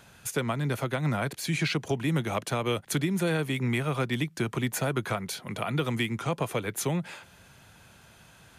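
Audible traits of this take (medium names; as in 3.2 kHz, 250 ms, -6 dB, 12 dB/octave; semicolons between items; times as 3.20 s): noise floor -55 dBFS; spectral tilt -5.0 dB/octave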